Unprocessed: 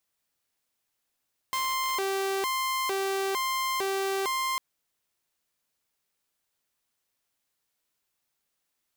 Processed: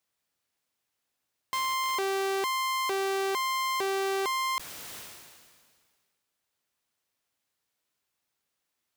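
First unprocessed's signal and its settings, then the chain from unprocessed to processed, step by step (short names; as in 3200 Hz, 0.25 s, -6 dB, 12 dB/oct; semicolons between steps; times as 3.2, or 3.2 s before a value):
siren hi-lo 389–1050 Hz 1.1/s saw -24 dBFS 3.05 s
HPF 47 Hz; high shelf 7000 Hz -4.5 dB; sustainer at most 32 dB/s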